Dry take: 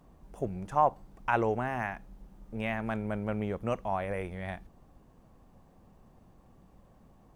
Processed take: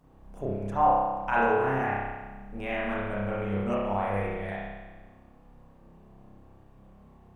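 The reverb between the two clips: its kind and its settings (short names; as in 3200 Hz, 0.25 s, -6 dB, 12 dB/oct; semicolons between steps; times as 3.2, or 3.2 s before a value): spring tank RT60 1.3 s, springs 30 ms, chirp 45 ms, DRR -7.5 dB; gain -4 dB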